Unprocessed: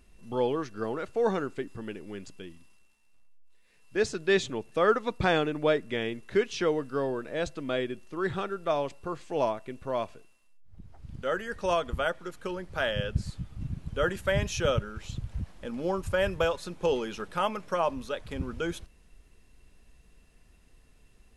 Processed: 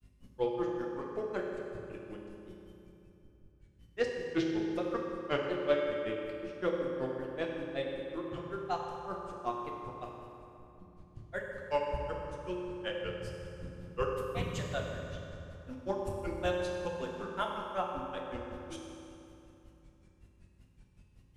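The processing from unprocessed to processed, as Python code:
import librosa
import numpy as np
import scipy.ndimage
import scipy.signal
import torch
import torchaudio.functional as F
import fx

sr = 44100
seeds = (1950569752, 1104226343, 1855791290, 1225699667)

y = fx.hum_notches(x, sr, base_hz=50, count=8)
y = fx.add_hum(y, sr, base_hz=50, snr_db=21)
y = fx.granulator(y, sr, seeds[0], grain_ms=109.0, per_s=5.3, spray_ms=21.0, spread_st=3)
y = fx.rev_fdn(y, sr, rt60_s=3.0, lf_ratio=1.0, hf_ratio=0.65, size_ms=17.0, drr_db=-1.5)
y = fx.doppler_dist(y, sr, depth_ms=0.21)
y = F.gain(torch.from_numpy(y), -4.5).numpy()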